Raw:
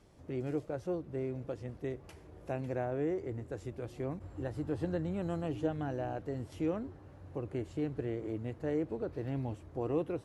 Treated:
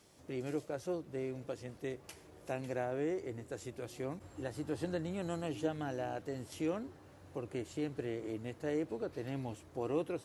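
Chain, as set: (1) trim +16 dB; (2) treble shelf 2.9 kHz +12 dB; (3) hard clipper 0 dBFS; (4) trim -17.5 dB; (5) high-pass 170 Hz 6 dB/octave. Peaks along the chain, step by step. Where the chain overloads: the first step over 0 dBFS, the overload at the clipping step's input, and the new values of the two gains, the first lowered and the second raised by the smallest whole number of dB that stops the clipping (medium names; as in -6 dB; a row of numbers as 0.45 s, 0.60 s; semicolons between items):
-4.5 dBFS, -4.0 dBFS, -4.0 dBFS, -21.5 dBFS, -22.0 dBFS; nothing clips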